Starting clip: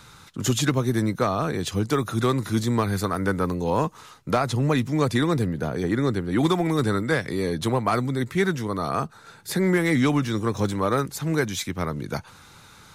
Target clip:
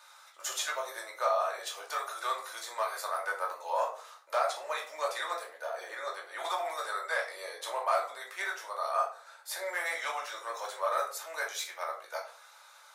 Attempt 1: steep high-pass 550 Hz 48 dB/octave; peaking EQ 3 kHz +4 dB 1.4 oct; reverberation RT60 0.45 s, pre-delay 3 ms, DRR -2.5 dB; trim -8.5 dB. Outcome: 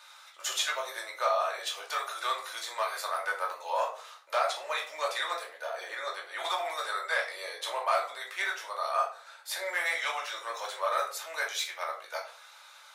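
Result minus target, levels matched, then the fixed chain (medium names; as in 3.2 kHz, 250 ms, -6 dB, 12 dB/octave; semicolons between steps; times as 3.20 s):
4 kHz band +3.5 dB
steep high-pass 550 Hz 48 dB/octave; peaking EQ 3 kHz -3 dB 1.4 oct; reverberation RT60 0.45 s, pre-delay 3 ms, DRR -2.5 dB; trim -8.5 dB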